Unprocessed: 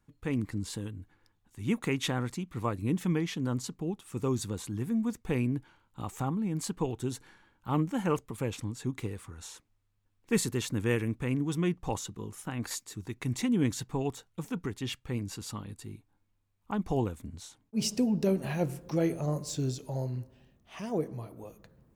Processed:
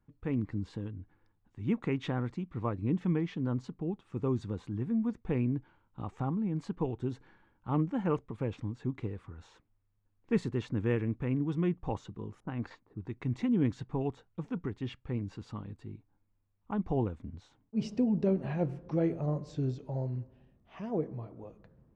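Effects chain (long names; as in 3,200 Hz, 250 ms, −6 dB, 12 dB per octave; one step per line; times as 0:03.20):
head-to-tape spacing loss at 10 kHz 33 dB
0:12.40–0:13.06: low-pass that shuts in the quiet parts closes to 380 Hz, open at −31 dBFS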